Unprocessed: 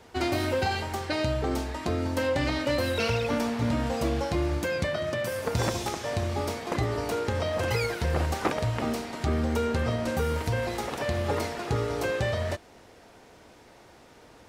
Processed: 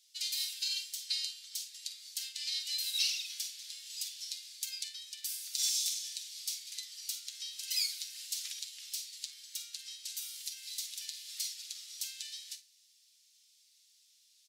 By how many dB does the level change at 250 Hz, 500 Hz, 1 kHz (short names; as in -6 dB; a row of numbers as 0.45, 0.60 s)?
under -40 dB, under -40 dB, under -40 dB